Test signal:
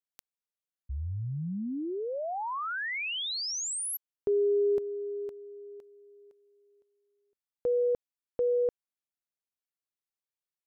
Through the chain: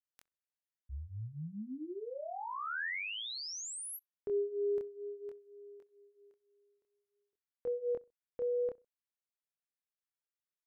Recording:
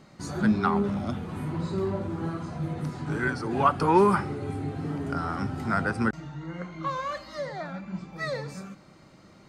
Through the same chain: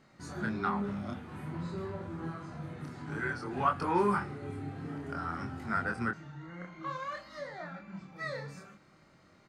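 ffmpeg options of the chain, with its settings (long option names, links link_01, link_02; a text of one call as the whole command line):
ffmpeg -i in.wav -filter_complex "[0:a]equalizer=frequency=1700:width_type=o:width=1.1:gain=5.5,flanger=delay=22.5:depth=6.6:speed=0.53,asplit=2[link_01][link_02];[link_02]adelay=64,lowpass=frequency=1500:poles=1,volume=-23dB,asplit=2[link_03][link_04];[link_04]adelay=64,lowpass=frequency=1500:poles=1,volume=0.29[link_05];[link_01][link_03][link_05]amix=inputs=3:normalize=0,volume=-6dB" out.wav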